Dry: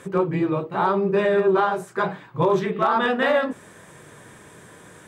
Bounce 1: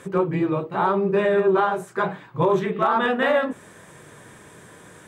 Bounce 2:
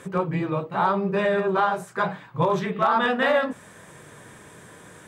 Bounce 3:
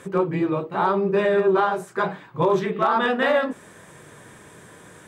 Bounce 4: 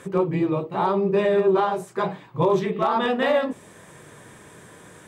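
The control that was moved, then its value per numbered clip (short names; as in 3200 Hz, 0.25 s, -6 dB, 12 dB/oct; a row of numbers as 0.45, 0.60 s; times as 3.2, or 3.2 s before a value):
dynamic EQ, frequency: 4900, 360, 110, 1500 Hz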